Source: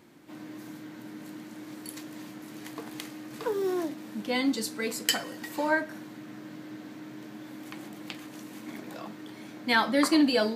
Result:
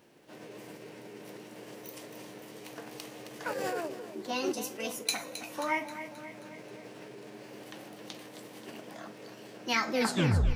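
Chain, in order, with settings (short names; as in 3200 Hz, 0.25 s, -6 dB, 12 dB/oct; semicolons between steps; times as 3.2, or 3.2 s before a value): tape stop at the end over 0.65 s; split-band echo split 300 Hz, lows 0.125 s, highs 0.266 s, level -12 dB; formant shift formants +5 st; gain -5 dB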